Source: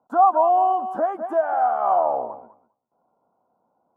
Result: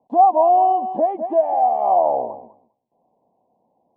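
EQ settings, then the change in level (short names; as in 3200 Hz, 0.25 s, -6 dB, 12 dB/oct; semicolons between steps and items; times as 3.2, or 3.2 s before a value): Butterworth band-stop 1400 Hz, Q 1.1; air absorption 340 m; +5.5 dB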